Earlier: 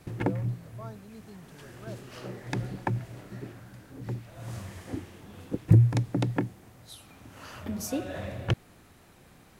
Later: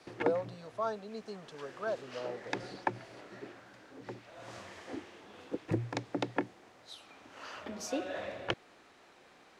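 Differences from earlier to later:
speech +11.5 dB
master: add three-way crossover with the lows and the highs turned down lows −21 dB, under 300 Hz, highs −22 dB, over 6,800 Hz

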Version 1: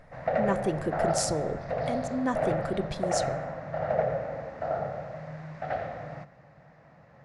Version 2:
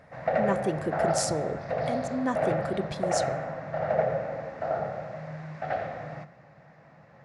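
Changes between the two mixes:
background: send +10.0 dB
master: add high-pass filter 79 Hz

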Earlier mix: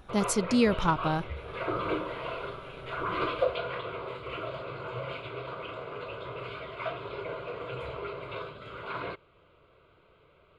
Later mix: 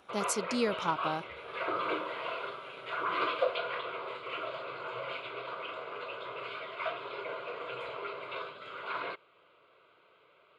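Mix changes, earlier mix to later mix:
speech: add parametric band 2,000 Hz −7.5 dB 2.2 octaves
master: add meter weighting curve A

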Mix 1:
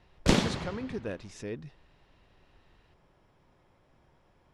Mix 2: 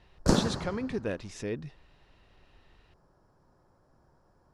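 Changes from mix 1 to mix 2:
speech +3.5 dB
background: add flat-topped bell 2,700 Hz −15 dB 1.1 octaves

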